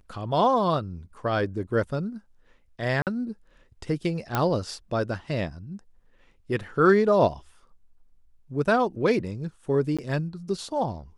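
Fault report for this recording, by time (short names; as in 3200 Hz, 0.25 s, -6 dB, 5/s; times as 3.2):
3.02–3.07 gap 48 ms
4.35 pop -10 dBFS
9.97–9.99 gap 16 ms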